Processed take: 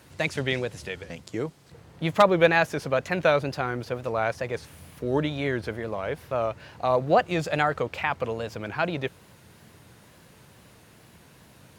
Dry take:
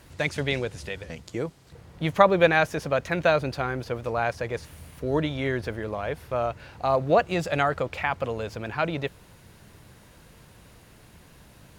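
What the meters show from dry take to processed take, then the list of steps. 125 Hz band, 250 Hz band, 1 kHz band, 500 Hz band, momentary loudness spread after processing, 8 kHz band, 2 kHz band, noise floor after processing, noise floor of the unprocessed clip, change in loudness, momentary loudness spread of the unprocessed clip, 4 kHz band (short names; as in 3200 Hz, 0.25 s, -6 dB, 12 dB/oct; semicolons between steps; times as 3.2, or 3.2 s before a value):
-1.0 dB, 0.0 dB, 0.0 dB, 0.0 dB, 13 LU, +0.5 dB, 0.0 dB, -54 dBFS, -53 dBFS, 0.0 dB, 13 LU, +0.5 dB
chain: wow and flutter 95 cents; wavefolder -6 dBFS; HPF 92 Hz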